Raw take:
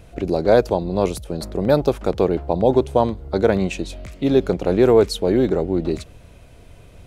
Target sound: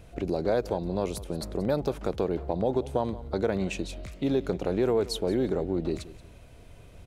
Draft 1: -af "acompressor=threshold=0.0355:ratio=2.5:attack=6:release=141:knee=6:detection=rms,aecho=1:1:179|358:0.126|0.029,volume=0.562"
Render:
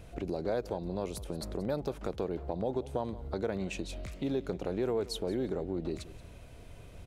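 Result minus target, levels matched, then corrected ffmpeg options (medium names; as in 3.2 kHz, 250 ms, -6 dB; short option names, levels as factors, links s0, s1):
compression: peak gain reduction +6.5 dB
-af "acompressor=threshold=0.126:ratio=2.5:attack=6:release=141:knee=6:detection=rms,aecho=1:1:179|358:0.126|0.029,volume=0.562"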